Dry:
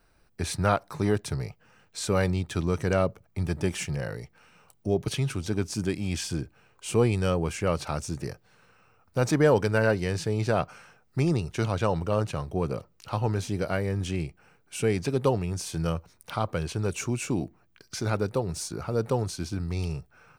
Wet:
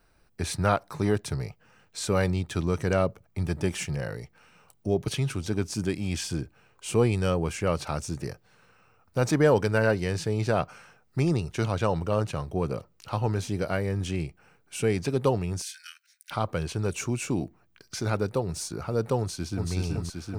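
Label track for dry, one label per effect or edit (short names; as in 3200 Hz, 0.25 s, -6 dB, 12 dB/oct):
15.620000	16.310000	Chebyshev high-pass 1500 Hz, order 6
19.190000	19.710000	echo throw 0.38 s, feedback 80%, level -2.5 dB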